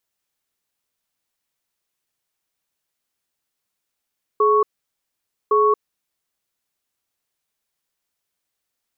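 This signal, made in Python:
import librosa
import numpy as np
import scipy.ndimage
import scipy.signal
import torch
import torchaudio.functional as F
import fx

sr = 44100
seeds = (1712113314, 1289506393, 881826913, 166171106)

y = fx.cadence(sr, length_s=1.92, low_hz=423.0, high_hz=1110.0, on_s=0.23, off_s=0.88, level_db=-15.5)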